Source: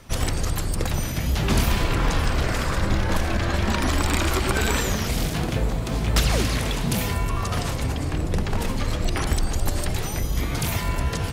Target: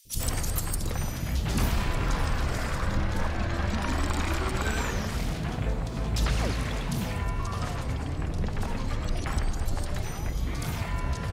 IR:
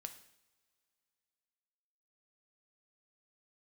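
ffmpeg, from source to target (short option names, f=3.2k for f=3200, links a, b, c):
-filter_complex "[0:a]asetnsamples=n=441:p=0,asendcmd='0.85 highshelf g -2.5;2.97 highshelf g -11',highshelf=f=8.2k:g=11.5,acrossover=split=390|3200[a][b][c];[a]adelay=50[d];[b]adelay=100[e];[d][e][c]amix=inputs=3:normalize=0,volume=-5dB"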